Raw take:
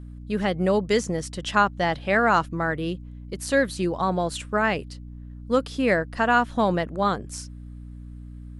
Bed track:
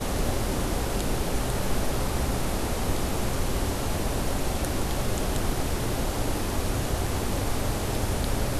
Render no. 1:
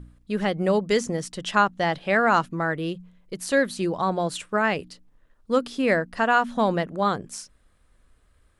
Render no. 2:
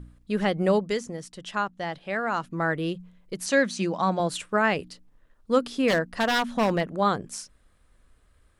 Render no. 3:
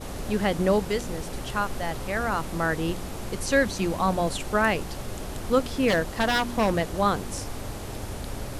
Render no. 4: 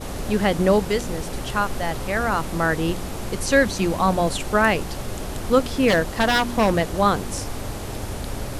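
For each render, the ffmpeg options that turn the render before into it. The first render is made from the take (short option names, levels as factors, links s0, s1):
-af "bandreject=f=60:t=h:w=4,bandreject=f=120:t=h:w=4,bandreject=f=180:t=h:w=4,bandreject=f=240:t=h:w=4,bandreject=f=300:t=h:w=4"
-filter_complex "[0:a]asettb=1/sr,asplit=3[s0][s1][s2];[s0]atrim=end=3.464[s3];[s1]atrim=start=3.46:end=4.2,asetpts=PTS-STARTPTS,afade=t=in:d=0.004:c=qsin,afade=t=out:st=0.736:d=0.004:c=qsin,highpass=180,equalizer=f=200:t=q:w=4:g=6,equalizer=f=410:t=q:w=4:g=-7,equalizer=f=2400:t=q:w=4:g=4,equalizer=f=6100:t=q:w=4:g=8,lowpass=f=8600:w=0.5412,lowpass=f=8600:w=1.3066[s4];[s2]atrim=start=4.196[s5];[s3][s4]acrossfade=d=0.004:c1=hsin:c2=qsin[s6];[s6][s5]acrossfade=d=0.004:c1=qsin:c2=hsin,asettb=1/sr,asplit=3[s7][s8][s9];[s7]atrim=end=5.884[s10];[s8]atrim=start=5.88:end=6.87,asetpts=PTS-STARTPTS,afade=t=in:d=0.004:c=qsin,afade=t=out:st=0.986:d=0.004:c=qsin,aeval=exprs='0.15*(abs(mod(val(0)/0.15+3,4)-2)-1)':c=same[s11];[s9]atrim=start=6.866[s12];[s10][s11]acrossfade=d=0.004:c1=hsin:c2=qsin[s13];[s13][s12]acrossfade=d=0.004:c1=qsin:c2=hsin,asplit=3[s14][s15][s16];[s14]atrim=end=0.99,asetpts=PTS-STARTPTS,afade=t=out:st=0.73:d=0.26:silence=0.398107[s17];[s15]atrim=start=0.99:end=2.39,asetpts=PTS-STARTPTS,volume=0.398[s18];[s16]atrim=start=2.39,asetpts=PTS-STARTPTS,afade=t=in:d=0.26:silence=0.398107[s19];[s17][s18][s19]concat=n=3:v=0:a=1"
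-filter_complex "[1:a]volume=0.422[s0];[0:a][s0]amix=inputs=2:normalize=0"
-af "volume=1.68"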